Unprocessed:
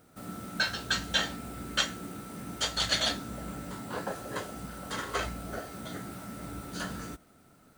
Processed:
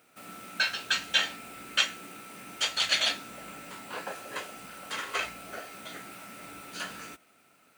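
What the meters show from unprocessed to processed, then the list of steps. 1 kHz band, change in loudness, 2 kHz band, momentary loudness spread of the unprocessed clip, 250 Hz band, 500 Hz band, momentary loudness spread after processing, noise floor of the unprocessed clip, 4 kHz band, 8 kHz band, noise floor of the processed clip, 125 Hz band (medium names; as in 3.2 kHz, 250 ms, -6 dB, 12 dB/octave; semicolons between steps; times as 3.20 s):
-0.5 dB, +3.5 dB, +3.0 dB, 14 LU, -9.0 dB, -4.0 dB, 19 LU, -60 dBFS, +2.5 dB, 0.0 dB, -63 dBFS, -13.5 dB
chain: high-pass 640 Hz 6 dB/octave; peaking EQ 2.5 kHz +10.5 dB 0.5 oct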